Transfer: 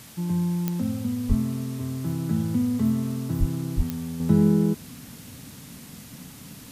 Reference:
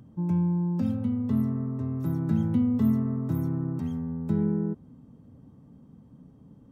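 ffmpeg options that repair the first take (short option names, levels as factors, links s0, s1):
-filter_complex "[0:a]adeclick=t=4,asplit=3[s0][s1][s2];[s0]afade=t=out:st=1.28:d=0.02[s3];[s1]highpass=f=140:w=0.5412,highpass=f=140:w=1.3066,afade=t=in:st=1.28:d=0.02,afade=t=out:st=1.4:d=0.02[s4];[s2]afade=t=in:st=1.4:d=0.02[s5];[s3][s4][s5]amix=inputs=3:normalize=0,asplit=3[s6][s7][s8];[s6]afade=t=out:st=3.39:d=0.02[s9];[s7]highpass=f=140:w=0.5412,highpass=f=140:w=1.3066,afade=t=in:st=3.39:d=0.02,afade=t=out:st=3.51:d=0.02[s10];[s8]afade=t=in:st=3.51:d=0.02[s11];[s9][s10][s11]amix=inputs=3:normalize=0,asplit=3[s12][s13][s14];[s12]afade=t=out:st=3.76:d=0.02[s15];[s13]highpass=f=140:w=0.5412,highpass=f=140:w=1.3066,afade=t=in:st=3.76:d=0.02,afade=t=out:st=3.88:d=0.02[s16];[s14]afade=t=in:st=3.88:d=0.02[s17];[s15][s16][s17]amix=inputs=3:normalize=0,afwtdn=0.005,asetnsamples=n=441:p=0,asendcmd='4.2 volume volume -7dB',volume=1"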